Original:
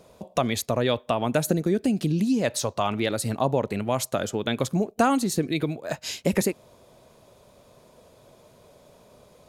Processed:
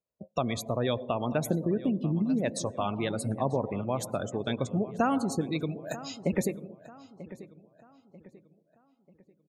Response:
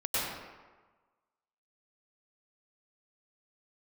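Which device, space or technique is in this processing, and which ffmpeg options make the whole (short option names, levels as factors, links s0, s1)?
keyed gated reverb: -filter_complex "[0:a]asettb=1/sr,asplit=3[s0][s1][s2];[s0]atrim=end=5.584[s3];[s1]atrim=start=5.58:end=5.98,asetpts=PTS-STARTPTS,afade=t=in:d=0.004:c=qsin,afade=t=out:st=0.396:d=0.004:c=qsin,aemphasis=mode=production:type=75fm[s4];[s2]atrim=start=5.976[s5];[s3][s4]acrossfade=d=0.004:c1=hsin:c2=qsin[s6];[s6][s5]acrossfade=d=0.004:c1=qsin:c2=hsin,asplit=3[s7][s8][s9];[1:a]atrim=start_sample=2205[s10];[s8][s10]afir=irnorm=-1:irlink=0[s11];[s9]apad=whole_len=418195[s12];[s11][s12]sidechaingate=range=0.0224:threshold=0.00282:ratio=16:detection=peak,volume=0.106[s13];[s7][s13]amix=inputs=2:normalize=0,afftdn=nr=36:nf=-32,lowshelf=f=180:g=3,asplit=2[s14][s15];[s15]adelay=940,lowpass=f=3000:p=1,volume=0.158,asplit=2[s16][s17];[s17]adelay=940,lowpass=f=3000:p=1,volume=0.4,asplit=2[s18][s19];[s19]adelay=940,lowpass=f=3000:p=1,volume=0.4,asplit=2[s20][s21];[s21]adelay=940,lowpass=f=3000:p=1,volume=0.4[s22];[s14][s16][s18][s20][s22]amix=inputs=5:normalize=0,volume=0.473"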